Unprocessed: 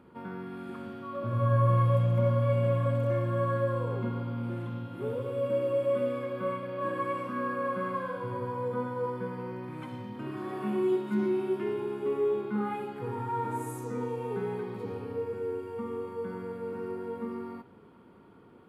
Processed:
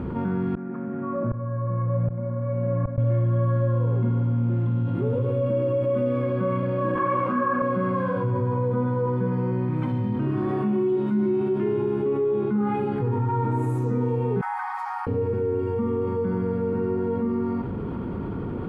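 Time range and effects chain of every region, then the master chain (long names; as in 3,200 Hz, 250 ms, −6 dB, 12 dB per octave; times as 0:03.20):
0:00.55–0:02.98: Chebyshev band-pass filter 150–2,000 Hz, order 3 + tremolo with a ramp in dB swelling 1.3 Hz, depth 27 dB
0:06.95–0:07.62: parametric band 1,100 Hz +11 dB 2.7 octaves + hum removal 55.12 Hz, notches 11 + micro pitch shift up and down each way 33 cents
0:14.41–0:15.07: Chebyshev high-pass filter 750 Hz, order 8 + flat-topped bell 3,200 Hz −12.5 dB 1 octave
whole clip: RIAA equalisation playback; envelope flattener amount 70%; level −3.5 dB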